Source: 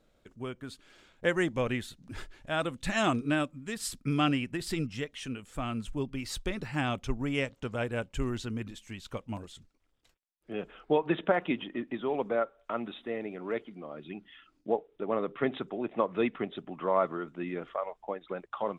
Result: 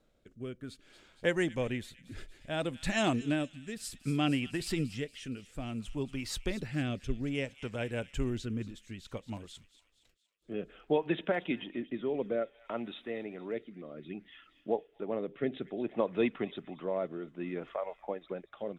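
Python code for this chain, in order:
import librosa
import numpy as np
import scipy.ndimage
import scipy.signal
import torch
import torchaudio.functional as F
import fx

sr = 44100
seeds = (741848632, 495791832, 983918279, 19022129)

y = fx.dynamic_eq(x, sr, hz=1200.0, q=2.1, threshold_db=-49.0, ratio=4.0, max_db=-8)
y = fx.echo_wet_highpass(y, sr, ms=233, feedback_pct=60, hz=2300.0, wet_db=-14)
y = fx.rotary(y, sr, hz=0.6)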